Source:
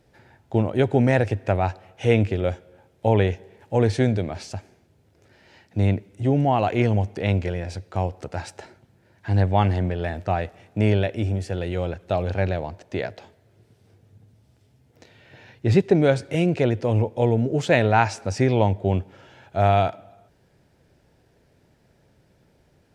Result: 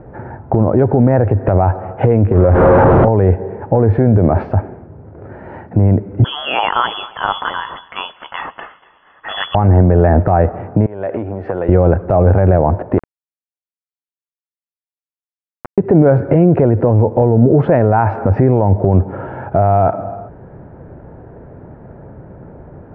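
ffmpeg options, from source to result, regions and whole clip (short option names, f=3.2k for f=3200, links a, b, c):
-filter_complex "[0:a]asettb=1/sr,asplit=3[a][b][c];[a]atrim=end=2.324[d];[b]atrim=start=2.32:end=3.08,asetpts=PTS-STARTPTS,afade=t=in:d=0.004:c=qsin,afade=t=out:st=0.756:d=0.004:c=qsin,aeval=exprs='val(0)+0.5*0.0501*sgn(val(0))':c=same,acompressor=threshold=-30dB:ratio=2:attack=3.2:release=140:knee=1:detection=peak[e];[c]atrim=start=3.076[f];[d][e]acrossfade=d=0.004:c1=hsin:c2=qsin[g];[g][f]acrossfade=d=0.004:c1=qsin:c2=hsin,asettb=1/sr,asplit=3[h][i][j];[h]atrim=end=6.244[k];[i]atrim=start=6.24:end=9.55,asetpts=PTS-STARTPTS,afade=t=in:d=0.004:c=qsin,afade=t=out:st=3.306:d=0.004:c=qsin,lowpass=f=3k:t=q:w=0.5098,lowpass=f=3k:t=q:w=0.6013,lowpass=f=3k:t=q:w=0.9,lowpass=f=3k:t=q:w=2.563,afreqshift=-3500,aecho=1:1:241|482|723|964:0.0794|0.0445|0.0249|0.0139,atrim=end_sample=145971[l];[j]atrim=start=9.546[m];[k][l]acrossfade=d=0.004:c1=hsin:c2=qsin[n];[n][m]acrossfade=d=0.004:c1=qsin:c2=hsin,asettb=1/sr,asplit=3[o][p][q];[o]atrim=end=10.864[r];[p]atrim=start=10.86:end=11.69,asetpts=PTS-STARTPTS,afade=t=in:d=0.004:c=qsin,afade=t=out:st=0.826:d=0.004:c=qsin,acompressor=threshold=-30dB:ratio=20:attack=3.2:release=140:knee=1:detection=peak,highpass=f=720:p=1[s];[q]atrim=start=11.686[t];[r][s]acrossfade=d=0.004:c1=hsin:c2=qsin[u];[u][t]acrossfade=d=0.004:c1=qsin:c2=hsin,asettb=1/sr,asplit=3[v][w][x];[v]atrim=end=12.984[y];[w]atrim=start=12.98:end=15.78,asetpts=PTS-STARTPTS,afade=t=in:d=0.004:c=qsin,afade=t=out:st=2.796:d=0.004:c=qsin,acompressor=threshold=-32dB:ratio=12:attack=3.2:release=140:knee=1:detection=peak,aeval=exprs='val(0)*gte(abs(val(0)),0.0531)':c=same[z];[x]atrim=start=15.776[aa];[y][z]acrossfade=d=0.004:c1=hsin:c2=qsin[ab];[ab][aa]acrossfade=d=0.004:c1=qsin:c2=hsin,lowpass=f=1.3k:w=0.5412,lowpass=f=1.3k:w=1.3066,acompressor=threshold=-26dB:ratio=4,alimiter=level_in=25.5dB:limit=-1dB:release=50:level=0:latency=1,volume=-1dB"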